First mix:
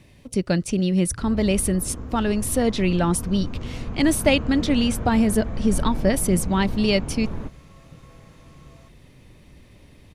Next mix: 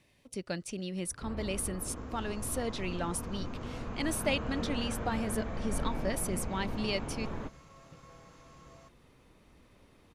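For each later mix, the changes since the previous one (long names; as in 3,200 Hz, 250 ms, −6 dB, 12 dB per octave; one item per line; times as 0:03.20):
speech −10.0 dB
master: add low-shelf EQ 310 Hz −10.5 dB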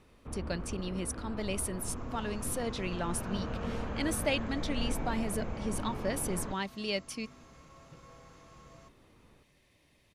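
first sound: entry −0.95 s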